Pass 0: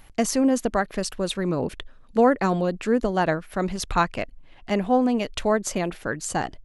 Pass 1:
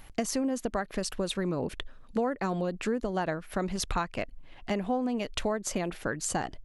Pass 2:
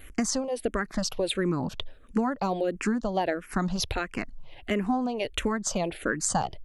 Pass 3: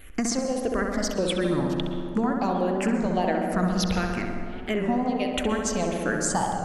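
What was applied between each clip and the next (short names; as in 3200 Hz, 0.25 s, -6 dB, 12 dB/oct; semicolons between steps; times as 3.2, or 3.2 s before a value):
compressor 5:1, threshold -27 dBFS, peak gain reduction 13 dB
vibrato 1.3 Hz 35 cents; endless phaser -1.5 Hz; gain +6 dB
darkening echo 66 ms, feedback 82%, low-pass 2000 Hz, level -4 dB; plate-style reverb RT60 2.4 s, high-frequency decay 0.45×, pre-delay 0.105 s, DRR 8 dB; record warp 33 1/3 rpm, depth 100 cents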